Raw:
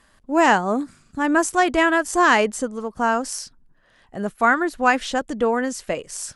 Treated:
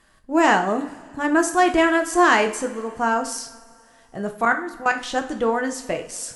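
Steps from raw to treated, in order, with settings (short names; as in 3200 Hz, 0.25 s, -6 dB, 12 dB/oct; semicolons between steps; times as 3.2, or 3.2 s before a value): 4.45–5.1 level quantiser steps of 16 dB; two-slope reverb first 0.44 s, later 2.5 s, from -19 dB, DRR 5 dB; gain -1.5 dB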